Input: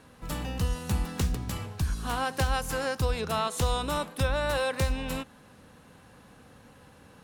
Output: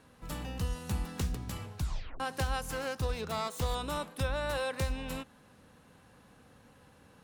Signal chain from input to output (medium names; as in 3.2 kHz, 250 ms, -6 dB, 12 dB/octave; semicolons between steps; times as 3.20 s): 1.79 s: tape stop 0.41 s; 2.71–3.75 s: self-modulated delay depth 0.1 ms; trim -5.5 dB